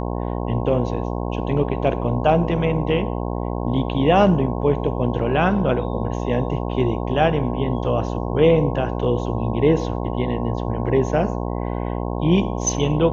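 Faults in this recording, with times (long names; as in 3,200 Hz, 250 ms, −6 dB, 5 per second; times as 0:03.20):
mains buzz 60 Hz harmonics 18 −25 dBFS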